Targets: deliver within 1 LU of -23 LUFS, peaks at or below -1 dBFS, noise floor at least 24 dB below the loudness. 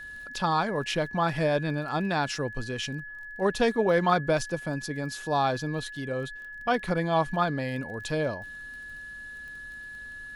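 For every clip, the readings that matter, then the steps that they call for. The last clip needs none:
ticks 21/s; steady tone 1700 Hz; tone level -39 dBFS; loudness -28.5 LUFS; peak -11.5 dBFS; loudness target -23.0 LUFS
-> de-click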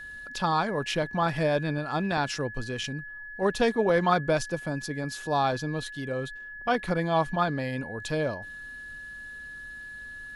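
ticks 0/s; steady tone 1700 Hz; tone level -39 dBFS
-> notch 1700 Hz, Q 30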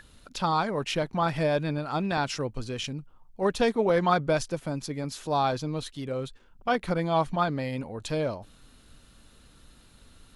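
steady tone none; loudness -28.5 LUFS; peak -11.0 dBFS; loudness target -23.0 LUFS
-> gain +5.5 dB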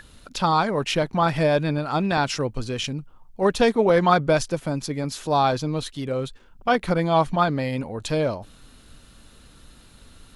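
loudness -23.0 LUFS; peak -5.5 dBFS; noise floor -51 dBFS

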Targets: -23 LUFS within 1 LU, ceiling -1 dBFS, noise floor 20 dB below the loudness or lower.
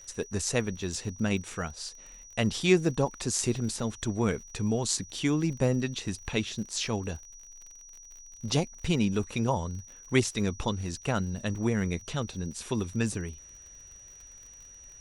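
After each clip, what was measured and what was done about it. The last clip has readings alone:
ticks 41/s; steady tone 5800 Hz; tone level -48 dBFS; loudness -30.0 LUFS; peak -9.0 dBFS; loudness target -23.0 LUFS
-> de-click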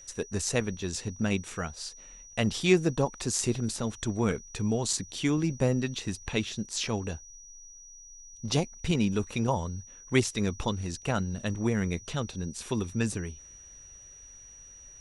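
ticks 0/s; steady tone 5800 Hz; tone level -48 dBFS
-> notch 5800 Hz, Q 30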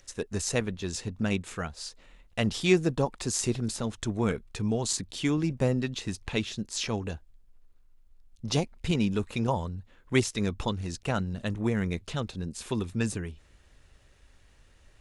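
steady tone none; loudness -30.0 LUFS; peak -9.0 dBFS; loudness target -23.0 LUFS
-> gain +7 dB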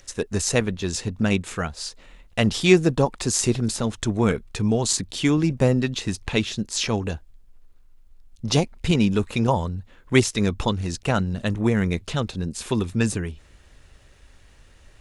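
loudness -23.0 LUFS; peak -2.0 dBFS; noise floor -52 dBFS

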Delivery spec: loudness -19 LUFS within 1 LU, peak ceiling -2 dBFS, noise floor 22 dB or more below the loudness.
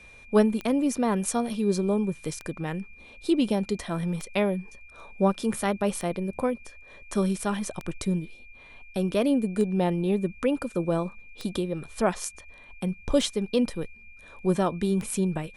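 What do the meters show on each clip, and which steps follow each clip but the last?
clicks 9; steady tone 2400 Hz; tone level -49 dBFS; loudness -27.5 LUFS; peak -8.5 dBFS; loudness target -19.0 LUFS
-> de-click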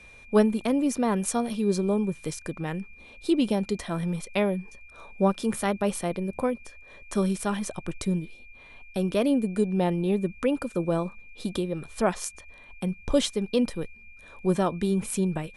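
clicks 0; steady tone 2400 Hz; tone level -49 dBFS
-> notch 2400 Hz, Q 30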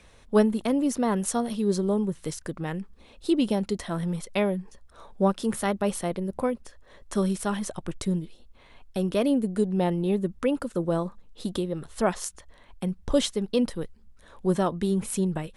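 steady tone none; loudness -27.5 LUFS; peak -8.5 dBFS; loudness target -19.0 LUFS
-> gain +8.5 dB; limiter -2 dBFS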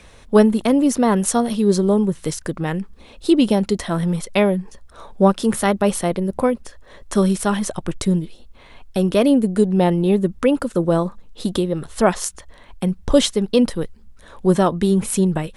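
loudness -19.0 LUFS; peak -2.0 dBFS; noise floor -46 dBFS

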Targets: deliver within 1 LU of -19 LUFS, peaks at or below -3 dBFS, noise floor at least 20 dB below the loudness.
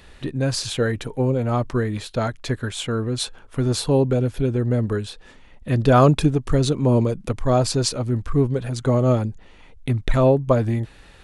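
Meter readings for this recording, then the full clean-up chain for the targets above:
loudness -21.5 LUFS; peak -3.5 dBFS; loudness target -19.0 LUFS
-> gain +2.5 dB; limiter -3 dBFS

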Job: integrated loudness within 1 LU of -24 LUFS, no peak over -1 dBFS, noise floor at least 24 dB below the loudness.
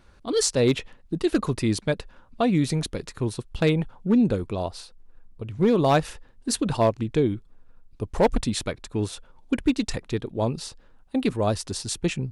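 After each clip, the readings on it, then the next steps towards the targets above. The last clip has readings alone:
clipped 0.3%; flat tops at -12.5 dBFS; loudness -25.5 LUFS; peak -12.5 dBFS; loudness target -24.0 LUFS
-> clip repair -12.5 dBFS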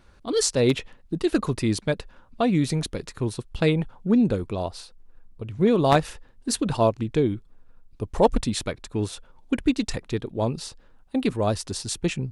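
clipped 0.0%; loudness -25.0 LUFS; peak -3.5 dBFS; loudness target -24.0 LUFS
-> gain +1 dB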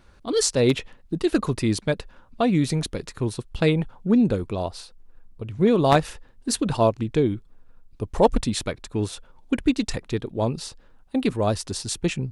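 loudness -24.0 LUFS; peak -2.5 dBFS; noise floor -53 dBFS

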